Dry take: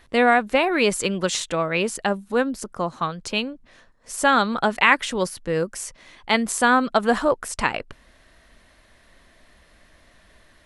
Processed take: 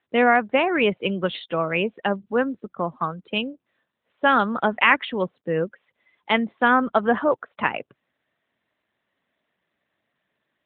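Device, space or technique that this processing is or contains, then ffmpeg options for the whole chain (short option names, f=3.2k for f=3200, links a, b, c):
mobile call with aggressive noise cancelling: -af "highpass=f=120:w=0.5412,highpass=f=120:w=1.3066,afftdn=nr=18:nf=-34" -ar 8000 -c:a libopencore_amrnb -b:a 12200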